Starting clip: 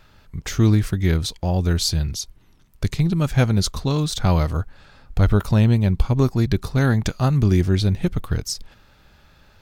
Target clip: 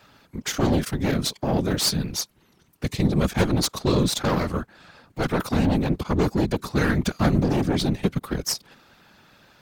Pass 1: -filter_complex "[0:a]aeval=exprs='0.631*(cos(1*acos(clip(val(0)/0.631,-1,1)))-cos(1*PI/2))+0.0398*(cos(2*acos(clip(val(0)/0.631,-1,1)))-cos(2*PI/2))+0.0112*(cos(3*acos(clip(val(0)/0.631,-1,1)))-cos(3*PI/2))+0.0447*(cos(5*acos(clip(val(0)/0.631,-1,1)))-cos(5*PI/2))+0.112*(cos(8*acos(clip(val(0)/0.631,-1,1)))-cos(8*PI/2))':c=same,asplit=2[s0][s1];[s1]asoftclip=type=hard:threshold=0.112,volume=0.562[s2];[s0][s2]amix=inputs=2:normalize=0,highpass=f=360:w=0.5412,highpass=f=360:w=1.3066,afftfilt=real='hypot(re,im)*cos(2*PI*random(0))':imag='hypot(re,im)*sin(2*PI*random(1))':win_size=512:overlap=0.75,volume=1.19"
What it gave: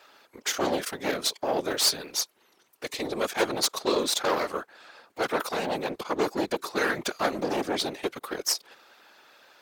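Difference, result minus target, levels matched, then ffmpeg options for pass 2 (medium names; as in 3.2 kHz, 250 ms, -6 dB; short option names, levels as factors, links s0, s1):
125 Hz band -18.0 dB
-filter_complex "[0:a]aeval=exprs='0.631*(cos(1*acos(clip(val(0)/0.631,-1,1)))-cos(1*PI/2))+0.0398*(cos(2*acos(clip(val(0)/0.631,-1,1)))-cos(2*PI/2))+0.0112*(cos(3*acos(clip(val(0)/0.631,-1,1)))-cos(3*PI/2))+0.0447*(cos(5*acos(clip(val(0)/0.631,-1,1)))-cos(5*PI/2))+0.112*(cos(8*acos(clip(val(0)/0.631,-1,1)))-cos(8*PI/2))':c=same,asplit=2[s0][s1];[s1]asoftclip=type=hard:threshold=0.112,volume=0.562[s2];[s0][s2]amix=inputs=2:normalize=0,highpass=f=130:w=0.5412,highpass=f=130:w=1.3066,afftfilt=real='hypot(re,im)*cos(2*PI*random(0))':imag='hypot(re,im)*sin(2*PI*random(1))':win_size=512:overlap=0.75,volume=1.19"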